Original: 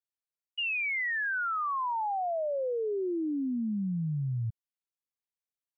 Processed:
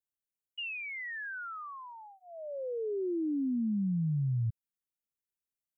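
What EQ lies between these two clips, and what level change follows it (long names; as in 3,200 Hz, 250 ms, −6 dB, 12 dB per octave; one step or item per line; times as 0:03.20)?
flat-topped bell 1,500 Hz −10 dB
phaser with its sweep stopped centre 1,800 Hz, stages 4
+1.5 dB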